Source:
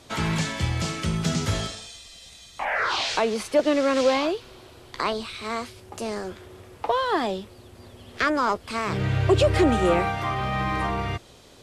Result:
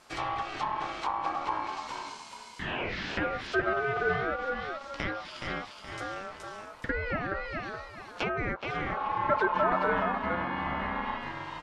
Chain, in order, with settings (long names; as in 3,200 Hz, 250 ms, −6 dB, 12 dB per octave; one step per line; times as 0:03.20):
echo with shifted repeats 422 ms, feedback 34%, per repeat −57 Hz, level −5 dB
ring modulation 970 Hz
treble cut that deepens with the level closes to 1,900 Hz, closed at −22.5 dBFS
level −4.5 dB